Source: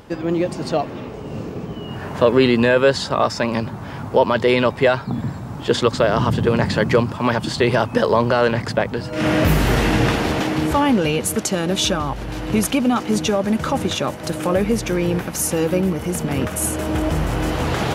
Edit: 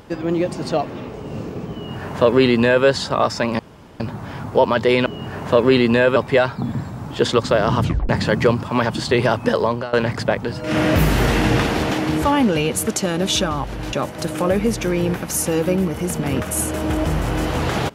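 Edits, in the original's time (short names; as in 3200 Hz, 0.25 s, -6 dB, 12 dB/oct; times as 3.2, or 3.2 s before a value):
1.75–2.85 copy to 4.65
3.59 insert room tone 0.41 s
6.32 tape stop 0.26 s
7.87–8.42 fade out equal-power, to -19 dB
12.42–13.98 cut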